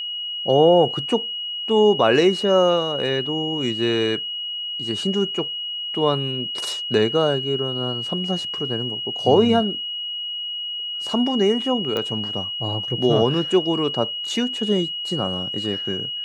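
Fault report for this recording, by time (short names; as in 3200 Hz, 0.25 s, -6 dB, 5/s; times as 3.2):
tone 2900 Hz -26 dBFS
11.97 pop -12 dBFS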